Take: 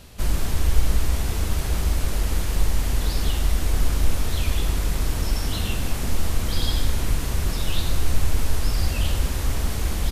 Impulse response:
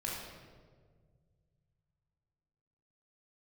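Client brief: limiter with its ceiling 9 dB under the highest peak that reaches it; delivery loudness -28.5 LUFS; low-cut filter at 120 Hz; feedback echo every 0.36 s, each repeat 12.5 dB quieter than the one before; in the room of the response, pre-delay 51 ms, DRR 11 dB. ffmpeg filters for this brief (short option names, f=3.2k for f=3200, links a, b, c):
-filter_complex "[0:a]highpass=120,alimiter=level_in=2dB:limit=-24dB:level=0:latency=1,volume=-2dB,aecho=1:1:360|720|1080:0.237|0.0569|0.0137,asplit=2[a][b];[1:a]atrim=start_sample=2205,adelay=51[c];[b][c]afir=irnorm=-1:irlink=0,volume=-13.5dB[d];[a][d]amix=inputs=2:normalize=0,volume=5.5dB"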